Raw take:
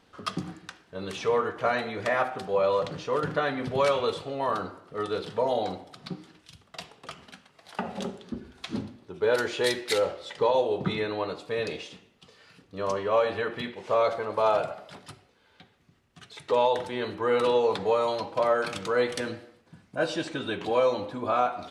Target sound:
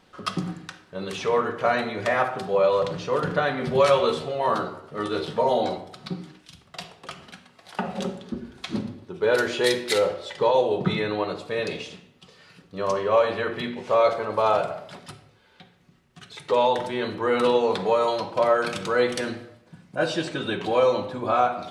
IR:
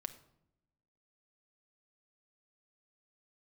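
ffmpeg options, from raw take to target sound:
-filter_complex "[0:a]asettb=1/sr,asplit=3[link_01][link_02][link_03];[link_01]atrim=end=3.604[link_04];[link_02]atrim=start=3.6:end=5.78,asetpts=PTS-STARTPTS,afade=type=in:duration=0.004:curve=qsin,afade=type=out:start_time=2.176:duration=0.004:curve=qsin,asplit=2[link_05][link_06];[link_06]adelay=13,volume=-4dB[link_07];[link_05][link_07]amix=inputs=2:normalize=0,atrim=end_sample=96138[link_08];[link_03]atrim=start=5.776[link_09];[link_04][link_08]acrossfade=duration=0.004:curve1=hsin:curve2=qsin[link_10];[link_10][link_09]acrossfade=duration=0.004:curve1=qsin:curve2=hsin[link_11];[1:a]atrim=start_sample=2205,afade=type=out:start_time=0.31:duration=0.01,atrim=end_sample=14112[link_12];[link_11][link_12]afir=irnorm=-1:irlink=0,volume=6dB"

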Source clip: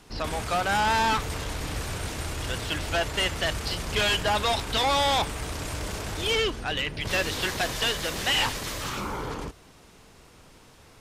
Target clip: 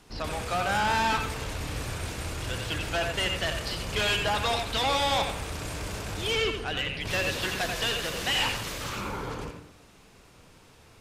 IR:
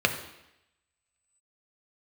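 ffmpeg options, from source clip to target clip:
-filter_complex "[0:a]asplit=2[link_01][link_02];[1:a]atrim=start_sample=2205,adelay=86[link_03];[link_02][link_03]afir=irnorm=-1:irlink=0,volume=-18dB[link_04];[link_01][link_04]amix=inputs=2:normalize=0,volume=-3dB"

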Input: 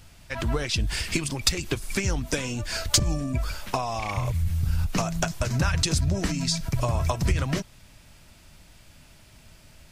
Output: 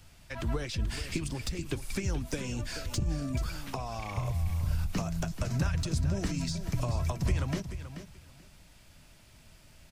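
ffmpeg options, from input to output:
ffmpeg -i in.wav -filter_complex "[0:a]acrossover=split=420[link_01][link_02];[link_02]acompressor=threshold=-33dB:ratio=3[link_03];[link_01][link_03]amix=inputs=2:normalize=0,acrossover=split=470|1000[link_04][link_05][link_06];[link_06]asoftclip=type=tanh:threshold=-22.5dB[link_07];[link_04][link_05][link_07]amix=inputs=3:normalize=0,aecho=1:1:433|866:0.282|0.0507,volume=-5dB" out.wav

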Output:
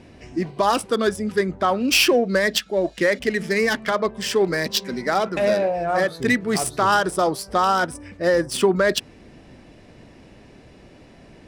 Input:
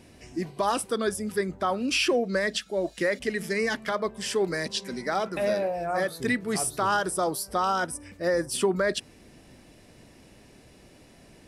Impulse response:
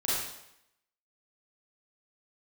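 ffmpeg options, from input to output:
-af "adynamicsmooth=sensitivity=3:basefreq=3100,crystalizer=i=1.5:c=0,volume=6.5dB"

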